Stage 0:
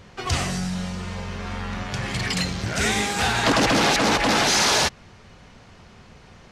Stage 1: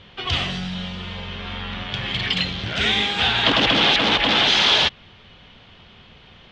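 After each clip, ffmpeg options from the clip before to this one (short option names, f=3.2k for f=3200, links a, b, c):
-af "lowpass=f=3.3k:t=q:w=5.1,volume=-2dB"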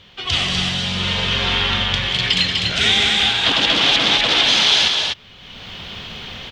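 -filter_complex "[0:a]aemphasis=mode=production:type=75fm,dynaudnorm=f=270:g=3:m=14dB,asplit=2[a][b];[b]aecho=0:1:183.7|247.8:0.316|0.631[c];[a][c]amix=inputs=2:normalize=0,volume=-2.5dB"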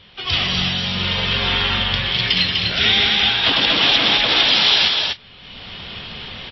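-ar 16000 -c:a libmp3lame -b:a 24k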